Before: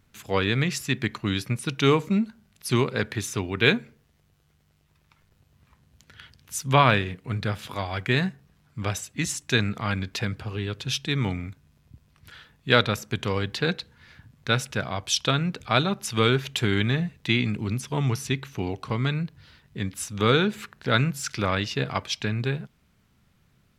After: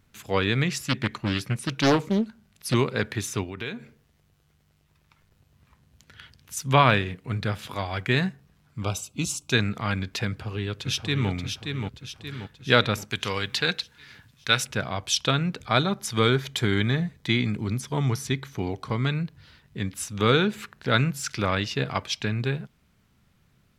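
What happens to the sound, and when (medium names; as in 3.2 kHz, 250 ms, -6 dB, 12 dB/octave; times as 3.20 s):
0.70–2.74 s: loudspeaker Doppler distortion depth 0.71 ms
3.43–6.57 s: compression 3:1, threshold -33 dBFS
8.84–9.52 s: Butterworth band-stop 1.8 kHz, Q 1.8
10.27–11.30 s: echo throw 580 ms, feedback 50%, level -5.5 dB
13.10–14.64 s: tilt shelf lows -6 dB
15.62–19.03 s: band-stop 2.7 kHz, Q 6.5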